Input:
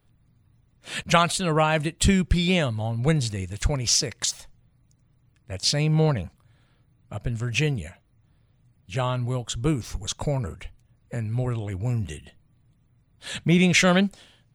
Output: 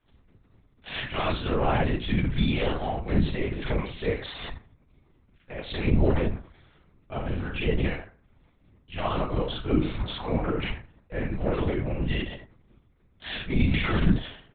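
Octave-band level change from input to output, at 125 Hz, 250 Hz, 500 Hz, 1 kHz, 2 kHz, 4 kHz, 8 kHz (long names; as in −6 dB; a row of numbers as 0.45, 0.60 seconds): −4.0 dB, −2.5 dB, −2.0 dB, −4.0 dB, −5.0 dB, −7.5 dB, below −40 dB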